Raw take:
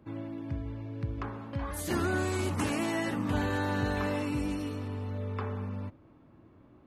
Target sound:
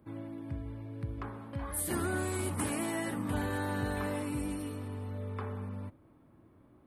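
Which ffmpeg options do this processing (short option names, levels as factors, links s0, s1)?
-af "highshelf=f=7700:t=q:w=3:g=6.5,bandreject=f=2700:w=18,volume=0.668"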